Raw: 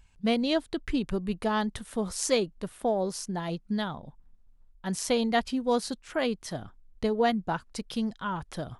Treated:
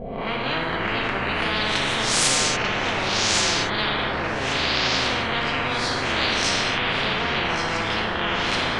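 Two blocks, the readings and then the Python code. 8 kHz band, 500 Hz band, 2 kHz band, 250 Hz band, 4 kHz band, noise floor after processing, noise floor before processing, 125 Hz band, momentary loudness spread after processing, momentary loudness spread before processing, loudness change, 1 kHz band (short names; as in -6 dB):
+12.0 dB, +1.5 dB, +16.0 dB, -0.5 dB, +15.5 dB, -26 dBFS, -58 dBFS, +7.5 dB, 5 LU, 9 LU, +8.0 dB, +8.5 dB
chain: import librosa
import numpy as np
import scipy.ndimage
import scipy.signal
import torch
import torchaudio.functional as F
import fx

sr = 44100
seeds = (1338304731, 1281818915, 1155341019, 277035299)

y = fx.spec_swells(x, sr, rise_s=0.46)
y = fx.peak_eq(y, sr, hz=7500.0, db=12.0, octaves=1.4)
y = fx.filter_lfo_lowpass(y, sr, shape='saw_up', hz=0.44, low_hz=590.0, high_hz=3800.0, q=2.1)
y = fx.echo_feedback(y, sr, ms=1130, feedback_pct=18, wet_db=-13)
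y = fx.echo_pitch(y, sr, ms=160, semitones=-6, count=3, db_per_echo=-3.0)
y = fx.high_shelf(y, sr, hz=4900.0, db=-10.0)
y = fx.rev_gated(y, sr, seeds[0], gate_ms=310, shape='falling', drr_db=-2.0)
y = fx.spectral_comp(y, sr, ratio=10.0)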